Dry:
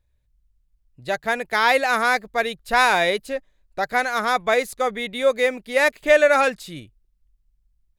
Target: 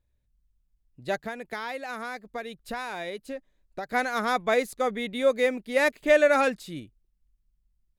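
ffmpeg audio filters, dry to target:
ffmpeg -i in.wav -filter_complex "[0:a]equalizer=frequency=260:width=0.91:gain=7,asettb=1/sr,asplit=3[link_01][link_02][link_03];[link_01]atrim=end=1.194[link_04];[link_02]atrim=start=1.19:end=3.89,asetpts=PTS-STARTPTS,afade=type=in:duration=0.004:curve=qsin,afade=type=out:start_time=2.696:duration=0.004:curve=qsin,acompressor=threshold=-26dB:ratio=6[link_05];[link_03]atrim=start=3.886[link_06];[link_04][link_05]acrossfade=duration=0.004:curve1=hsin:curve2=qsin[link_07];[link_07][link_06]acrossfade=duration=0.004:curve1=qsin:curve2=hsin,volume=-6dB" out.wav

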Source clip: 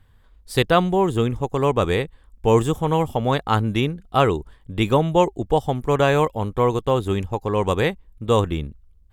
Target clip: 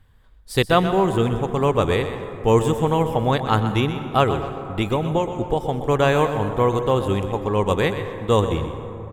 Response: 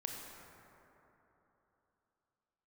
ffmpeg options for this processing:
-filter_complex "[0:a]asettb=1/sr,asplit=3[link_01][link_02][link_03];[link_01]atrim=end=4.234[link_04];[link_02]atrim=start=4.23:end=5.78,asetpts=PTS-STARTPTS,afade=type=in:duration=0.004:curve=qsin,afade=type=out:start_time=1.546:duration=0.004:curve=qsin,acompressor=threshold=-17dB:ratio=6[link_05];[link_03]atrim=start=5.776[link_06];[link_04][link_05]acrossfade=duration=0.004:curve1=hsin:curve2=qsin[link_07];[link_07][link_06]acrossfade=duration=0.004:curve1=qsin:curve2=hsin,asplit=2[link_08][link_09];[link_09]adelay=250,highpass=300,lowpass=3400,asoftclip=type=hard:threshold=-13.5dB,volume=-21dB[link_10];[link_08][link_10]amix=inputs=2:normalize=0,asplit=2[link_11][link_12];[1:a]atrim=start_sample=2205,adelay=125[link_13];[link_12][link_13]afir=irnorm=-1:irlink=0,volume=-7.5dB[link_14];[link_11][link_14]amix=inputs=2:normalize=0"

